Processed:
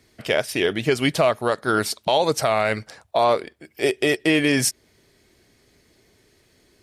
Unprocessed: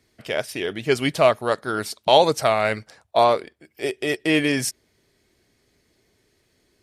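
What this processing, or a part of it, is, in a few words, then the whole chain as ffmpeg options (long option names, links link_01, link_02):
stacked limiters: -af "alimiter=limit=-8dB:level=0:latency=1:release=498,alimiter=limit=-14.5dB:level=0:latency=1:release=196,volume=6dB"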